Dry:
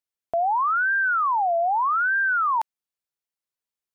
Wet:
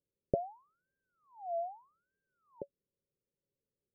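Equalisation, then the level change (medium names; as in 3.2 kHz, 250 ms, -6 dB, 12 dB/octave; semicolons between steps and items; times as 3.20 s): rippled Chebyshev low-pass 580 Hz, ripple 6 dB; +16.0 dB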